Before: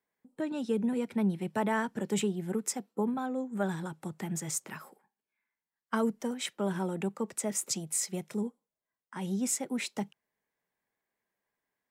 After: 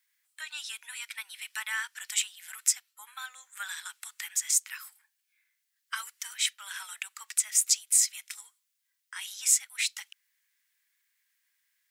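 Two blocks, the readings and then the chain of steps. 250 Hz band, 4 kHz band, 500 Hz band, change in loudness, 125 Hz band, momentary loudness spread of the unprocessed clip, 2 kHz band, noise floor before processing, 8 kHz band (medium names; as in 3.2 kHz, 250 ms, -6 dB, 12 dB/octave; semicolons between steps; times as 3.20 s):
under -40 dB, +9.0 dB, under -35 dB, +4.5 dB, under -40 dB, 8 LU, +5.5 dB, under -85 dBFS, +9.5 dB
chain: Bessel high-pass 2.5 kHz, order 6; in parallel at +2 dB: compression, threshold -52 dBFS, peak gain reduction 22.5 dB; on the sum: trim +8.5 dB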